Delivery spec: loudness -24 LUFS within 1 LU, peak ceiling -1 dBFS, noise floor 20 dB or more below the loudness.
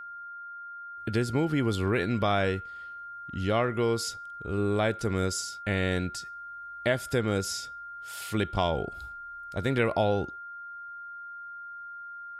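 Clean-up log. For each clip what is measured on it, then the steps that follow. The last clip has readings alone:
steady tone 1400 Hz; tone level -39 dBFS; loudness -29.0 LUFS; peak -12.5 dBFS; loudness target -24.0 LUFS
-> notch 1400 Hz, Q 30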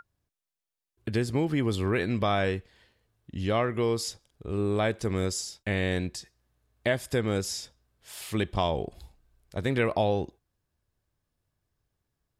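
steady tone none; loudness -29.0 LUFS; peak -13.0 dBFS; loudness target -24.0 LUFS
-> gain +5 dB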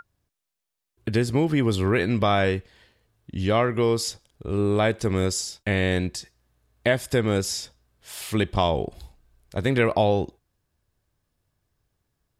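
loudness -24.0 LUFS; peak -8.0 dBFS; noise floor -83 dBFS

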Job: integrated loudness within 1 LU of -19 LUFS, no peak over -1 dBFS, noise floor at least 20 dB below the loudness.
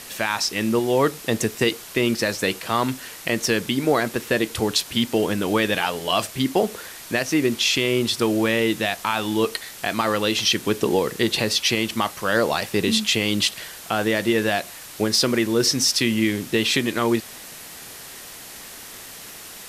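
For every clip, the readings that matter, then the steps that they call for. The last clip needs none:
noise floor -40 dBFS; noise floor target -42 dBFS; loudness -21.5 LUFS; peak -7.0 dBFS; loudness target -19.0 LUFS
-> denoiser 6 dB, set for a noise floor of -40 dBFS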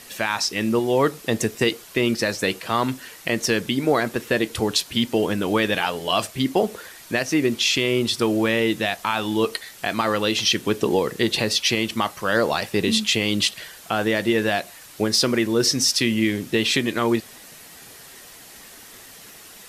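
noise floor -44 dBFS; loudness -22.0 LUFS; peak -7.5 dBFS; loudness target -19.0 LUFS
-> gain +3 dB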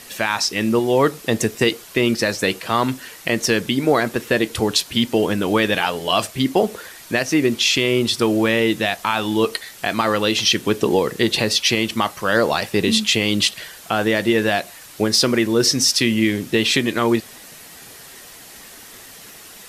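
loudness -19.0 LUFS; peak -4.5 dBFS; noise floor -41 dBFS

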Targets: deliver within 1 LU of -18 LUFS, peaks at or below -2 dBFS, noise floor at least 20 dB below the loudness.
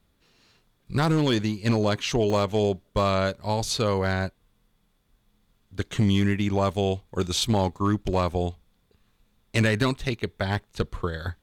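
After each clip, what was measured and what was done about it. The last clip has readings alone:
clipped 0.5%; flat tops at -14.5 dBFS; dropouts 1; longest dropout 1.1 ms; loudness -25.5 LUFS; peak -14.5 dBFS; loudness target -18.0 LUFS
-> clip repair -14.5 dBFS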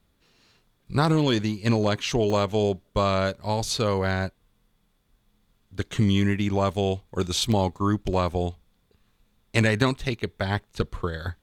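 clipped 0.0%; dropouts 1; longest dropout 1.1 ms
-> interpolate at 2.3, 1.1 ms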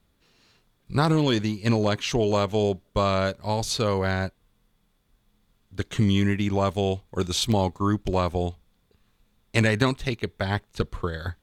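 dropouts 0; loudness -25.0 LUFS; peak -5.5 dBFS; loudness target -18.0 LUFS
-> gain +7 dB; limiter -2 dBFS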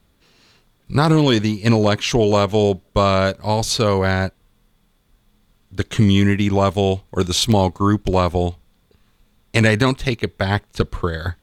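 loudness -18.5 LUFS; peak -2.0 dBFS; noise floor -61 dBFS

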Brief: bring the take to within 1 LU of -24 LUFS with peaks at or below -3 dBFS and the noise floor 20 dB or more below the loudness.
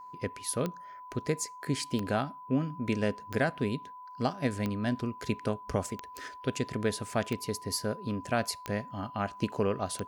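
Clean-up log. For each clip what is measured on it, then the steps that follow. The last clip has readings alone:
clicks 8; steady tone 1000 Hz; tone level -44 dBFS; loudness -33.0 LUFS; peak -14.5 dBFS; loudness target -24.0 LUFS
-> de-click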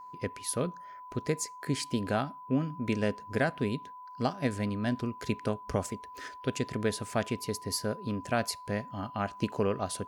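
clicks 0; steady tone 1000 Hz; tone level -44 dBFS
-> notch 1000 Hz, Q 30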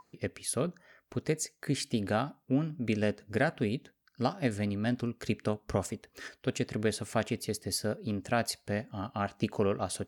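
steady tone none; loudness -33.0 LUFS; peak -14.5 dBFS; loudness target -24.0 LUFS
-> gain +9 dB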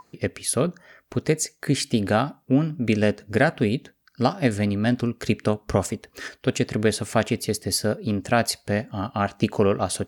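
loudness -24.0 LUFS; peak -5.5 dBFS; noise floor -64 dBFS

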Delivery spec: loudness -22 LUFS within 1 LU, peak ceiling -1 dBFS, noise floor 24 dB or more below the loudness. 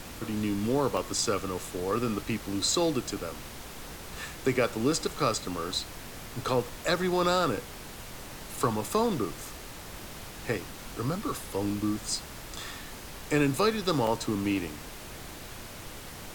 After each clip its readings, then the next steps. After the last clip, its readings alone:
dropouts 6; longest dropout 1.1 ms; noise floor -43 dBFS; noise floor target -54 dBFS; loudness -30.0 LUFS; peak -12.0 dBFS; loudness target -22.0 LUFS
-> interpolate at 0.97/1.96/2.5/7.19/9.17/14.07, 1.1 ms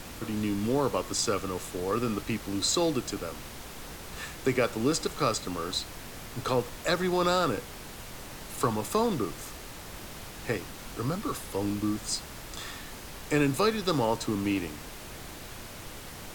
dropouts 0; noise floor -43 dBFS; noise floor target -54 dBFS
-> noise print and reduce 11 dB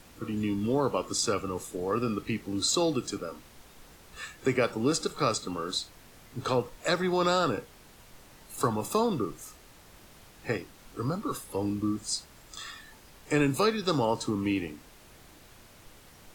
noise floor -54 dBFS; loudness -29.5 LUFS; peak -12.0 dBFS; loudness target -22.0 LUFS
-> gain +7.5 dB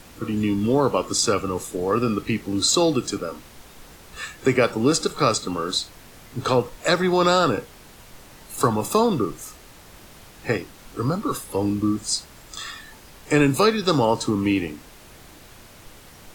loudness -22.0 LUFS; peak -4.5 dBFS; noise floor -47 dBFS

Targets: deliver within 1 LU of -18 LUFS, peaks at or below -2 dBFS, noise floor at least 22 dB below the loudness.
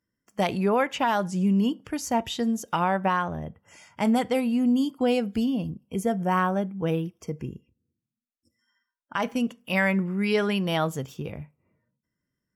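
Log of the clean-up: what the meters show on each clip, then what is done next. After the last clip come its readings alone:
loudness -26.0 LUFS; peak -13.5 dBFS; loudness target -18.0 LUFS
-> gain +8 dB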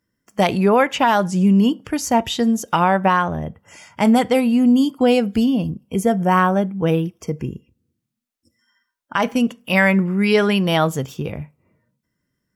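loudness -18.0 LUFS; peak -5.5 dBFS; noise floor -77 dBFS

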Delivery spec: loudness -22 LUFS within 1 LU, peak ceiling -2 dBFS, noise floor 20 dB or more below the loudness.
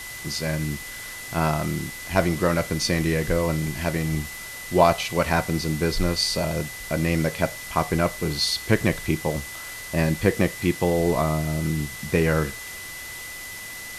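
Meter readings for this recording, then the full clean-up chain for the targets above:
steady tone 2000 Hz; tone level -37 dBFS; noise floor -37 dBFS; noise floor target -45 dBFS; loudness -24.5 LUFS; peak -3.5 dBFS; loudness target -22.0 LUFS
-> notch 2000 Hz, Q 30; denoiser 8 dB, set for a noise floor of -37 dBFS; gain +2.5 dB; limiter -2 dBFS

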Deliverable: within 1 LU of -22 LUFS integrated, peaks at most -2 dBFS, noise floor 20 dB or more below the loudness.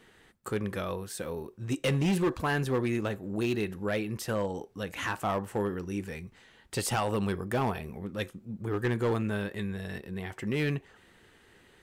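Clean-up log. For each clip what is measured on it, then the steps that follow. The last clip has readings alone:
clipped 1.4%; flat tops at -22.5 dBFS; loudness -32.0 LUFS; peak -22.5 dBFS; loudness target -22.0 LUFS
-> clip repair -22.5 dBFS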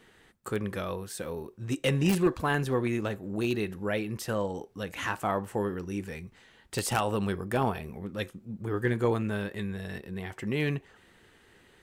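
clipped 0.0%; loudness -31.5 LUFS; peak -13.5 dBFS; loudness target -22.0 LUFS
-> gain +9.5 dB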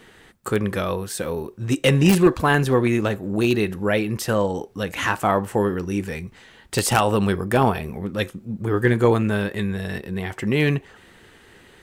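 loudness -22.0 LUFS; peak -4.0 dBFS; noise floor -51 dBFS

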